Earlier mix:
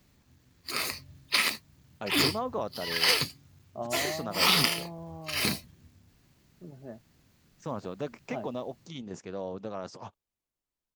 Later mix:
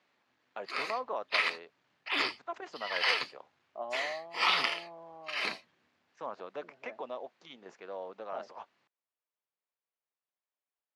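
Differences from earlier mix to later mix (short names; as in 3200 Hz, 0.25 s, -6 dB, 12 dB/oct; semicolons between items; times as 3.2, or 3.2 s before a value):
first voice: entry -1.45 s; master: add BPF 610–2800 Hz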